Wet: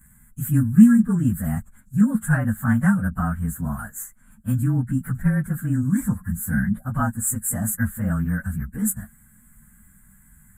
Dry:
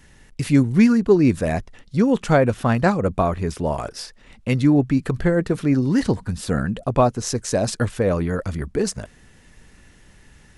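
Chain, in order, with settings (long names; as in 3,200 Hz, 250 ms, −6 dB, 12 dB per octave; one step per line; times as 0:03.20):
partials spread apart or drawn together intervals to 108%
drawn EQ curve 120 Hz 0 dB, 220 Hz +6 dB, 380 Hz −24 dB, 1,100 Hz −4 dB, 1,600 Hz +7 dB, 2,200 Hz −16 dB, 5,400 Hz −27 dB, 7,600 Hz +10 dB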